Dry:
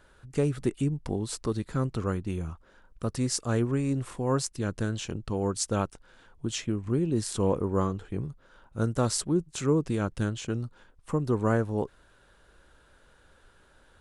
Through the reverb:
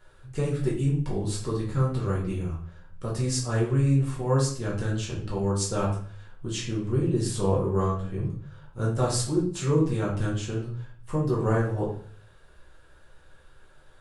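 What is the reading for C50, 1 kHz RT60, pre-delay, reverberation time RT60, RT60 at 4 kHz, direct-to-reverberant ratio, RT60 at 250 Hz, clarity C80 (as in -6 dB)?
5.0 dB, 0.50 s, 5 ms, 0.50 s, 0.45 s, -5.0 dB, 0.60 s, 9.5 dB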